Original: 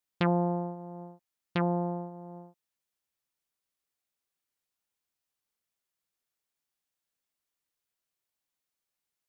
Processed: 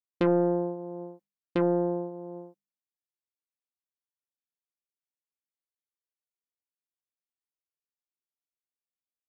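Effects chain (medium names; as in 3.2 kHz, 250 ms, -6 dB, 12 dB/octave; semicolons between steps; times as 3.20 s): gate with hold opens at -39 dBFS; peaking EQ 370 Hz +15 dB 1.5 oct; hum notches 50/100/150/200 Hz; comb 3.8 ms, depth 38%; saturation -8.5 dBFS, distortion -20 dB; trim -4.5 dB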